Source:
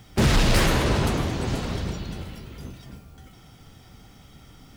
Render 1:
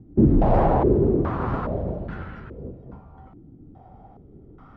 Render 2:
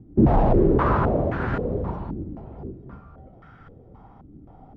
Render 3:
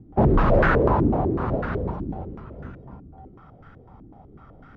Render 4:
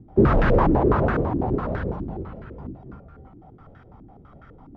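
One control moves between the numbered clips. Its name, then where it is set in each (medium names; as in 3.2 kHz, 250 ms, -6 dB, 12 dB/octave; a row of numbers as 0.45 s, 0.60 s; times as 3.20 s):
step-sequenced low-pass, rate: 2.4 Hz, 3.8 Hz, 8 Hz, 12 Hz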